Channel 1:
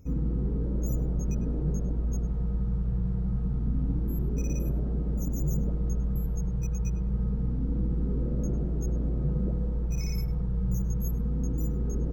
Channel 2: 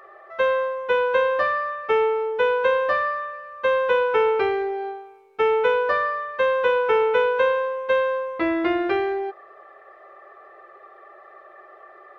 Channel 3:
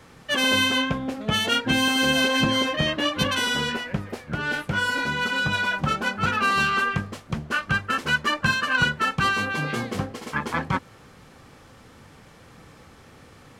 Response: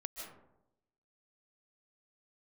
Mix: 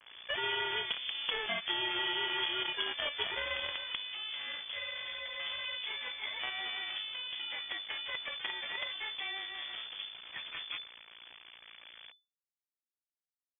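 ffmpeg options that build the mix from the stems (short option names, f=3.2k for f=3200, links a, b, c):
-filter_complex "[0:a]asoftclip=type=hard:threshold=-31.5dB,volume=-18dB[a];[1:a]bandreject=f=50:t=h:w=6,bandreject=f=100:t=h:w=6,bandreject=f=150:t=h:w=6,bandreject=f=200:t=h:w=6,bandreject=f=250:t=h:w=6,bandreject=f=300:t=h:w=6,bandreject=f=350:t=h:w=6,bandreject=f=400:t=h:w=6,bandreject=f=450:t=h:w=6,volume=-19dB[b];[2:a]volume=-4.5dB,afade=t=out:st=3.55:d=0.61:silence=0.398107[c];[a][b][c]amix=inputs=3:normalize=0,acrusher=bits=5:dc=4:mix=0:aa=0.000001,lowpass=f=3k:t=q:w=0.5098,lowpass=f=3k:t=q:w=0.6013,lowpass=f=3k:t=q:w=0.9,lowpass=f=3k:t=q:w=2.563,afreqshift=-3500,acompressor=threshold=-35dB:ratio=2.5"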